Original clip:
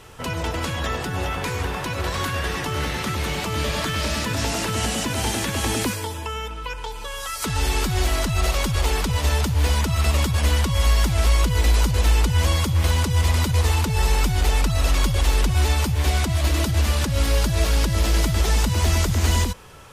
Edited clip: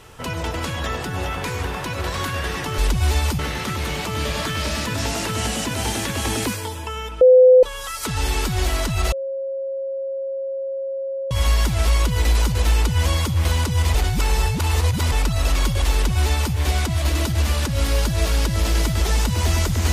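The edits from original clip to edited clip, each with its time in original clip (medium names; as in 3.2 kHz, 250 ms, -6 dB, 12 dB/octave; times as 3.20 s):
6.60–7.02 s: bleep 509 Hz -6.5 dBFS
8.51–10.70 s: bleep 541 Hz -23.5 dBFS
13.33–14.51 s: reverse
15.32–15.93 s: copy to 2.78 s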